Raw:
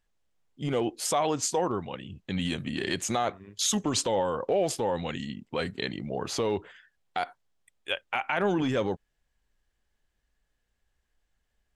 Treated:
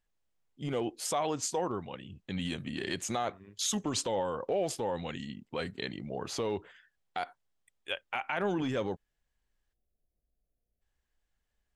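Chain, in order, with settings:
gain on a spectral selection 0:09.73–0:10.81, 770–9,900 Hz −26 dB
level −5 dB

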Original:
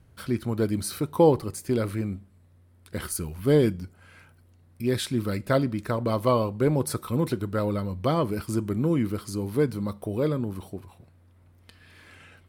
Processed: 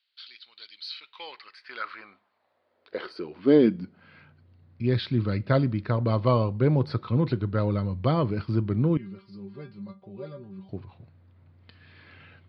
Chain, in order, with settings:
high-pass filter sweep 3,600 Hz → 110 Hz, 0:00.76–0:04.48
elliptic low-pass filter 4,600 Hz, stop band 40 dB
0:08.97–0:10.69: stiff-string resonator 190 Hz, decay 0.23 s, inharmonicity 0.002
level −1 dB

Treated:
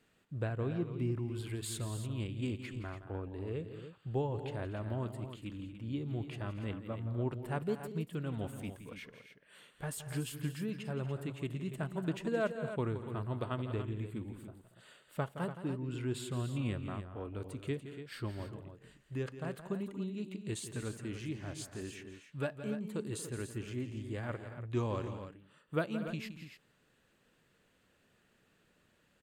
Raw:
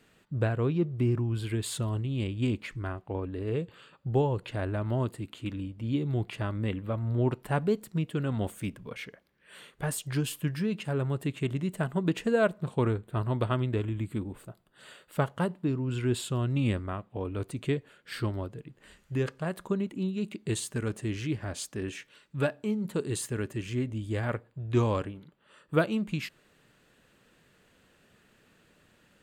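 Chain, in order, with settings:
0:01.29–0:02.66: high-shelf EQ 5,300 Hz +5 dB
multi-tap delay 169/235/288 ms −12/−15.5/−10.5 dB
level −8.5 dB

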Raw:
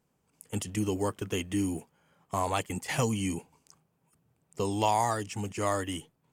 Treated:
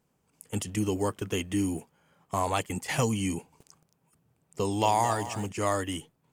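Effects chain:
0:03.38–0:05.46: feedback echo at a low word length 222 ms, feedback 35%, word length 8 bits, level −12 dB
level +1.5 dB

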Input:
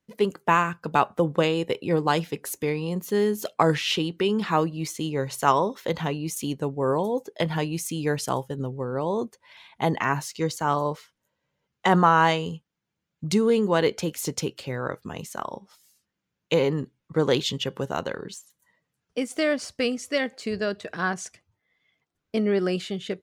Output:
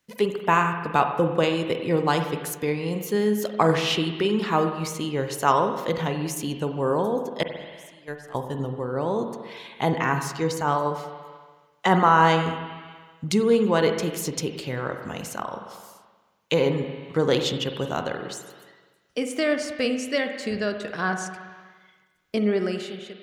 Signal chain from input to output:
fade-out on the ending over 0.74 s
0:07.43–0:08.35: noise gate −20 dBFS, range −28 dB
spring reverb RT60 1.3 s, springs 43/47 ms, chirp 50 ms, DRR 6 dB
one half of a high-frequency compander encoder only

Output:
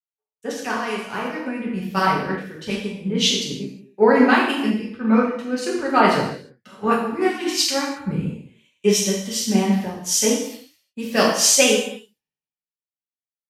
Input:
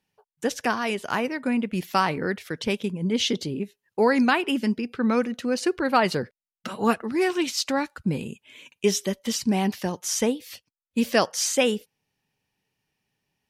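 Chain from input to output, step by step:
reverb whose tail is shaped and stops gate 380 ms falling, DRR −4.5 dB
multiband upward and downward expander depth 100%
level −3 dB

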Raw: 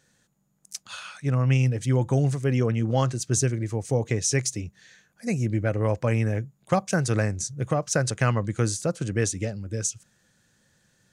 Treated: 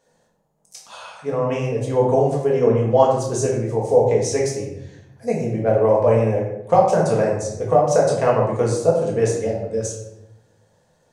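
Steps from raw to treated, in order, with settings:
flat-topped bell 650 Hz +14 dB
convolution reverb RT60 0.85 s, pre-delay 4 ms, DRR −3.5 dB
level −6.5 dB

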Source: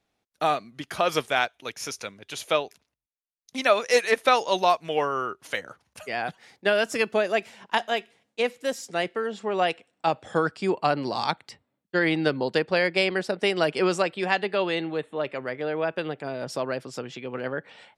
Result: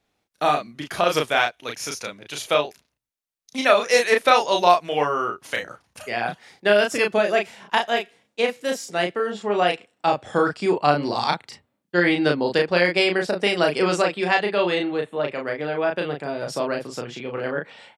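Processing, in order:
double-tracking delay 34 ms −3.5 dB
level +2.5 dB

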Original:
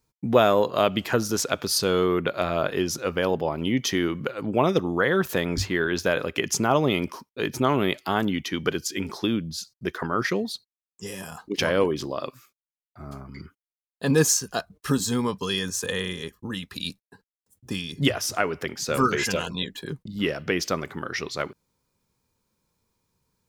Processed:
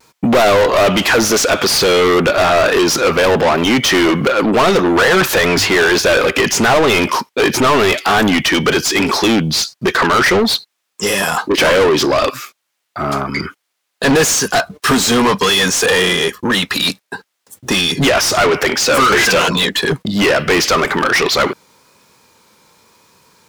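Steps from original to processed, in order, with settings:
mid-hump overdrive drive 36 dB, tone 4,500 Hz, clips at −4 dBFS
pitch vibrato 0.92 Hz 36 cents

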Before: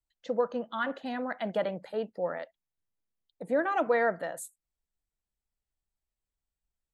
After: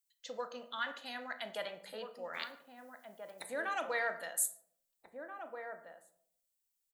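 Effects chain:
0:02.33–0:03.45: ceiling on every frequency bin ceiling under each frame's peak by 28 dB
first-order pre-emphasis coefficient 0.97
slap from a distant wall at 280 metres, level −6 dB
on a send at −9 dB: convolution reverb RT60 0.65 s, pre-delay 24 ms
on the sum: level +8.5 dB

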